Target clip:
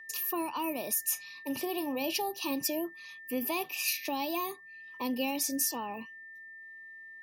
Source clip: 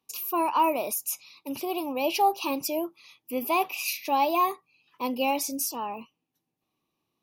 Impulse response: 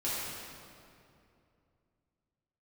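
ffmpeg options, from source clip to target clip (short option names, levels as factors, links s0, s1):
-filter_complex "[0:a]asettb=1/sr,asplit=3[s0][s1][s2];[s0]atrim=end=1.044[s3];[s1]atrim=start=1.04:end=2.17,asetpts=PTS-STARTPTS,afade=t=in:d=0.004:c=qsin,afade=t=out:st=1.126:d=0.004:c=qsin,asplit=2[s4][s5];[s5]adelay=34,volume=0.224[s6];[s4][s6]amix=inputs=2:normalize=0,atrim=end_sample=49833[s7];[s2]atrim=start=2.166[s8];[s3][s7]acrossfade=d=0.004:c1=hsin:c2=qsin[s9];[s9][s8]acrossfade=d=0.004:c1=qsin:c2=hsin,aeval=exprs='val(0)+0.00501*sin(2*PI*1800*n/s)':c=same,acrossover=split=320|3000[s10][s11][s12];[s11]acompressor=threshold=0.0158:ratio=6[s13];[s10][s13][s12]amix=inputs=3:normalize=0"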